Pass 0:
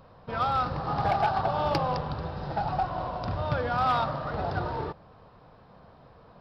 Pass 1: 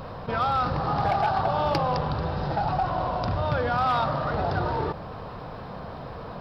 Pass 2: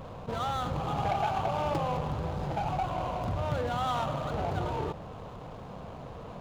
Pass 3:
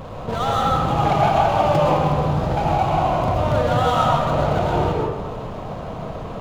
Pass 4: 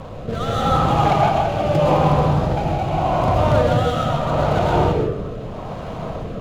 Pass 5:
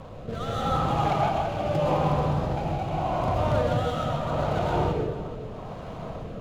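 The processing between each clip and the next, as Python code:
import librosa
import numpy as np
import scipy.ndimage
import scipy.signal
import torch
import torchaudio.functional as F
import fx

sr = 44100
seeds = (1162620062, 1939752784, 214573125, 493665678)

y1 = fx.env_flatten(x, sr, amount_pct=50)
y2 = scipy.signal.medfilt(y1, 25)
y2 = y2 * 10.0 ** (-4.5 / 20.0)
y3 = fx.rev_freeverb(y2, sr, rt60_s=1.1, hf_ratio=0.35, predelay_ms=85, drr_db=-1.5)
y3 = y3 * 10.0 ** (8.5 / 20.0)
y4 = fx.rotary(y3, sr, hz=0.8)
y4 = y4 * 10.0 ** (3.5 / 20.0)
y5 = y4 + 10.0 ** (-15.5 / 20.0) * np.pad(y4, (int(431 * sr / 1000.0), 0))[:len(y4)]
y5 = y5 * 10.0 ** (-8.0 / 20.0)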